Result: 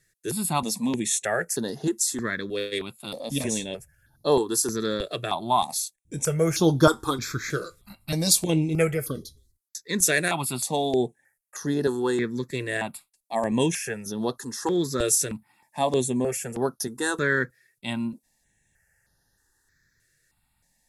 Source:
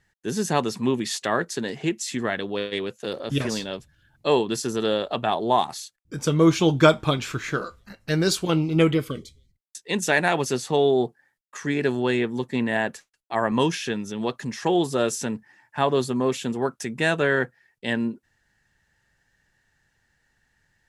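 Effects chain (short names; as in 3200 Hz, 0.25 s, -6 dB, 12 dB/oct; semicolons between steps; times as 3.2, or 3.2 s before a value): bell 11000 Hz +15 dB 1.2 oct; notch 3000 Hz, Q 6.1; step phaser 3.2 Hz 230–7800 Hz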